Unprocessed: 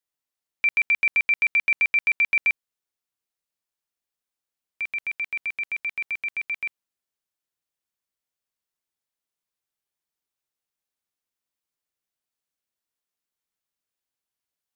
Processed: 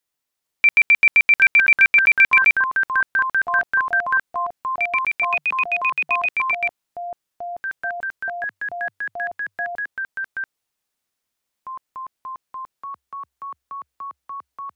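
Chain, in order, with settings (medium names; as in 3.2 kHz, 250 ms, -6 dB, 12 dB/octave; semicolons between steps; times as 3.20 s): 5.30–6.29 s: frequency shift +140 Hz; ever faster or slower copies 438 ms, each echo -7 st, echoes 3, each echo -6 dB; trim +7 dB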